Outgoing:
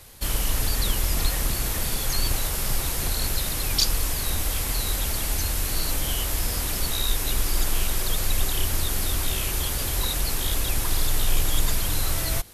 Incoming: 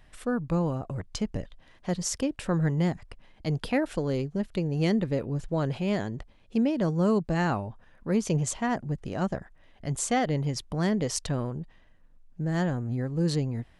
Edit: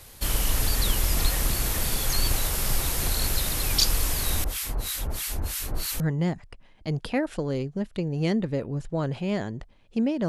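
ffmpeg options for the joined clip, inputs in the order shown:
ffmpeg -i cue0.wav -i cue1.wav -filter_complex "[0:a]asettb=1/sr,asplit=3[link_01][link_02][link_03];[link_01]atrim=end=4.444[link_04];[link_02]atrim=start=4.44:end=6,asetpts=PTS-STARTPTS,afade=type=in:duration=0.004:curve=qsin,afade=type=out:start_time=1.556:duration=0.004:curve=qsin,acrossover=split=1200[link_05][link_06];[link_05]aeval=exprs='val(0)*(1-1/2+1/2*cos(2*PI*3.1*n/s))':channel_layout=same[link_07];[link_06]aeval=exprs='val(0)*(1-1/2-1/2*cos(2*PI*3.1*n/s))':channel_layout=same[link_08];[link_07][link_08]amix=inputs=2:normalize=0[link_09];[link_03]atrim=start=5.996[link_10];[link_04][link_09]acrossfade=duration=0.004:curve1=hsin:curve2=qsin[link_11];[link_11][link_10]acrossfade=duration=0.004:curve1=qsin:curve2=hsin,apad=whole_dur=10.28,atrim=end=10.28,atrim=end=6.002[link_12];[1:a]atrim=start=2.588:end=6.87[link_13];[link_12][link_13]acrossfade=duration=0.004:curve1=hsin:curve2=hsin" out.wav

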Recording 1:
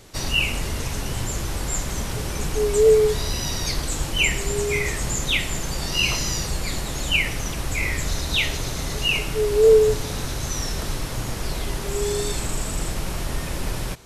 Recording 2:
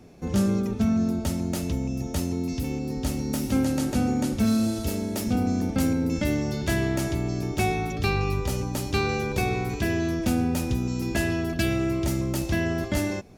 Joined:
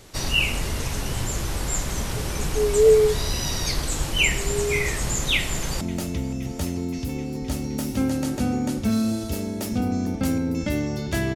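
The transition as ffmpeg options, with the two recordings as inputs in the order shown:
ffmpeg -i cue0.wav -i cue1.wav -filter_complex "[0:a]apad=whole_dur=11.35,atrim=end=11.35,atrim=end=5.812[link_01];[1:a]atrim=start=1.358:end=6.9[link_02];[link_01][link_02]acrossfade=duration=0.004:curve1=hsin:curve2=hsin,asplit=2[link_03][link_04];[link_04]afade=type=in:start_time=5.36:duration=0.01,afade=type=out:start_time=5.81:duration=0.01,aecho=0:1:260|520|780|1040|1300|1560|1820|2080|2340|2600|2860|3120:0.125893|0.107009|0.0909574|0.0773138|0.0657167|0.0558592|0.0474803|0.0403583|0.0343045|0.0291588|0.024785|0.0210673[link_05];[link_03][link_05]amix=inputs=2:normalize=0" out.wav

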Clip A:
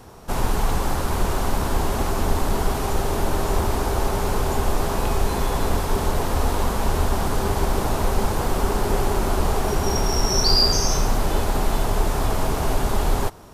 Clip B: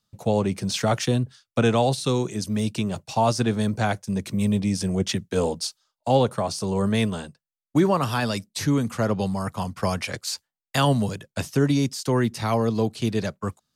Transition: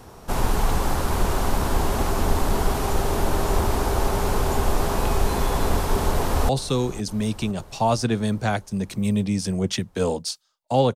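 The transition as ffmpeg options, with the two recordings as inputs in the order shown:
ffmpeg -i cue0.wav -i cue1.wav -filter_complex "[0:a]apad=whole_dur=10.95,atrim=end=10.95,atrim=end=6.492[link_01];[1:a]atrim=start=1.848:end=6.31[link_02];[link_01][link_02]acrossfade=duration=0.004:curve1=hsin:curve2=hsin,asplit=2[link_03][link_04];[link_04]afade=type=in:start_time=6.05:duration=0.01,afade=type=out:start_time=6.49:duration=0.01,aecho=0:1:510|1020|1530|2040|2550|3060|3570:0.149624|0.0972553|0.063216|0.0410904|0.0267087|0.0173607|0.0112844[link_05];[link_03][link_05]amix=inputs=2:normalize=0" out.wav

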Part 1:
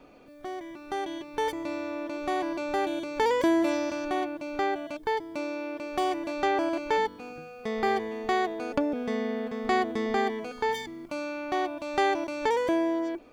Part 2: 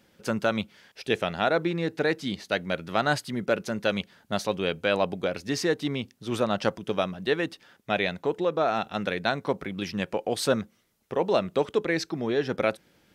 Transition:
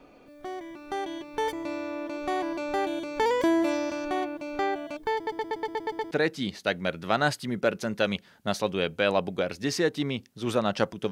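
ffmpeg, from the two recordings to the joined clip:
ffmpeg -i cue0.wav -i cue1.wav -filter_complex "[0:a]apad=whole_dur=11.11,atrim=end=11.11,asplit=8[link_01][link_02][link_03][link_04][link_05][link_06][link_07][link_08];[link_01]atrim=end=5.272[link_09];[link_02]atrim=start=5.148:end=5.272[link_10];[link_03]atrim=start=5.148:end=5.272[link_11];[link_04]atrim=start=5.148:end=5.272[link_12];[link_05]atrim=start=5.148:end=5.272[link_13];[link_06]atrim=start=5.148:end=5.272[link_14];[link_07]atrim=start=5.148:end=5.272[link_15];[link_08]atrim=start=5.148:end=5.272[link_16];[1:a]atrim=start=1.958:end=6.96[link_17];[link_09][link_10]acrossfade=duration=0.004:curve1=hsin:curve2=hsin[link_18];[link_18][link_11]acrossfade=duration=0.004:curve1=hsin:curve2=hsin[link_19];[link_19][link_12]acrossfade=duration=0.004:curve1=hsin:curve2=hsin[link_20];[link_20][link_13]acrossfade=duration=0.004:curve1=hsin:curve2=hsin[link_21];[link_21][link_14]acrossfade=duration=0.004:curve1=hsin:curve2=hsin[link_22];[link_22][link_15]acrossfade=duration=0.004:curve1=hsin:curve2=hsin[link_23];[link_23][link_16]acrossfade=duration=0.004:curve1=hsin:curve2=hsin[link_24];[link_24][link_17]acrossfade=duration=0.004:curve1=hsin:curve2=hsin" out.wav

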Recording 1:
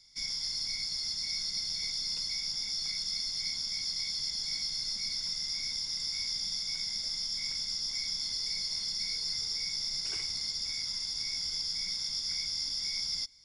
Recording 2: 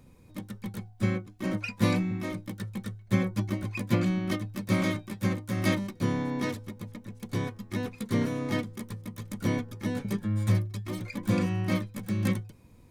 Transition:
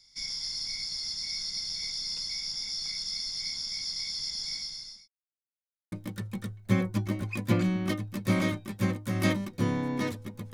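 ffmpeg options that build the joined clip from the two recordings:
ffmpeg -i cue0.wav -i cue1.wav -filter_complex "[0:a]apad=whole_dur=10.53,atrim=end=10.53,asplit=2[link_01][link_02];[link_01]atrim=end=5.08,asetpts=PTS-STARTPTS,afade=type=out:start_time=4.49:duration=0.59[link_03];[link_02]atrim=start=5.08:end=5.92,asetpts=PTS-STARTPTS,volume=0[link_04];[1:a]atrim=start=2.34:end=6.95,asetpts=PTS-STARTPTS,afade=type=in:duration=0.004:curve=hsin[link_05];[link_03][link_04][link_05]concat=n=3:v=0:a=1" out.wav

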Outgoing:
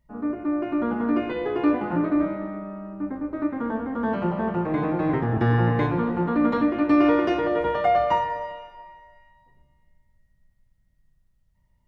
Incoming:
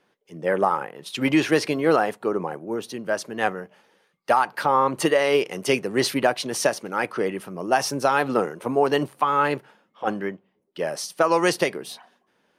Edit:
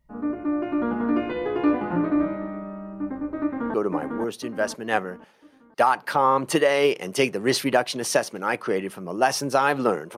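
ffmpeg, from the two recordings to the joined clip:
ffmpeg -i cue0.wav -i cue1.wav -filter_complex "[0:a]apad=whole_dur=10.17,atrim=end=10.17,atrim=end=3.742[link_01];[1:a]atrim=start=2.238:end=8.67[link_02];[link_01][link_02]acrossfade=duration=0.004:curve1=hsin:curve2=hsin,asplit=2[link_03][link_04];[link_04]afade=type=in:start_time=3.42:duration=0.01,afade=type=out:start_time=3.74:duration=0.01,aecho=0:1:500|1000|1500|2000|2500:0.707946|0.283178|0.113271|0.0453085|0.0181234[link_05];[link_03][link_05]amix=inputs=2:normalize=0" out.wav

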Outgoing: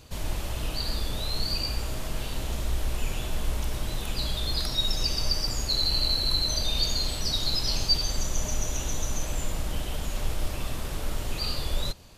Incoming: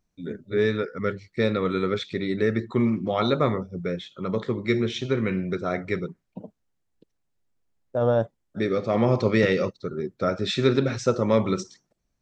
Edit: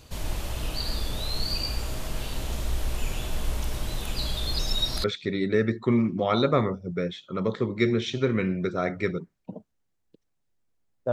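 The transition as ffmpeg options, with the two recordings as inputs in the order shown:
ffmpeg -i cue0.wav -i cue1.wav -filter_complex "[0:a]apad=whole_dur=11.12,atrim=end=11.12,asplit=2[link_01][link_02];[link_01]atrim=end=4.592[link_03];[link_02]atrim=start=4.588:end=5.042,asetpts=PTS-STARTPTS,areverse[link_04];[1:a]atrim=start=1.918:end=8[link_05];[link_03][link_04]acrossfade=duration=0.004:curve1=hsin:curve2=hsin[link_06];[link_06][link_05]acrossfade=duration=0.004:curve1=hsin:curve2=hsin" out.wav

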